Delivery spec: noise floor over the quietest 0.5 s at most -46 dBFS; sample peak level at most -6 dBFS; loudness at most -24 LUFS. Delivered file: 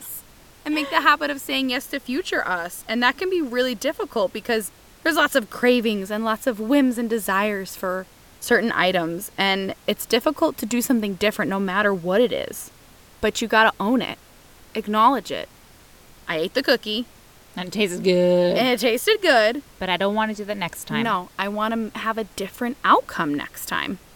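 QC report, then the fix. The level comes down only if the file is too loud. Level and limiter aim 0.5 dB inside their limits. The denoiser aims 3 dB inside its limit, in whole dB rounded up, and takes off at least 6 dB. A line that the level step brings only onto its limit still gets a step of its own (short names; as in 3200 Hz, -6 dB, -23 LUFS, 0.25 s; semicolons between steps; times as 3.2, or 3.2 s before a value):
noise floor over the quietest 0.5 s -49 dBFS: OK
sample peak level -2.5 dBFS: fail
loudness -22.0 LUFS: fail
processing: gain -2.5 dB; limiter -6.5 dBFS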